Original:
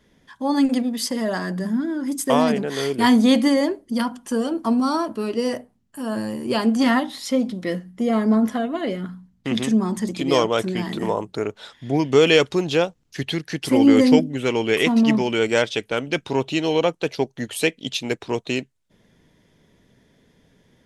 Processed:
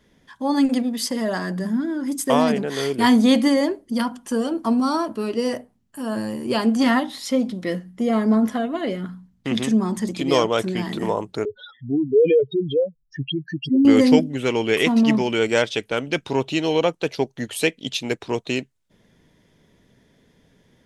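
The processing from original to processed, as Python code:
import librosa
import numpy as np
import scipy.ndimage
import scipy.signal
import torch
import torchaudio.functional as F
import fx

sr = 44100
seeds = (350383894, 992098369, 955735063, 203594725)

y = fx.spec_expand(x, sr, power=3.9, at=(11.45, 13.85))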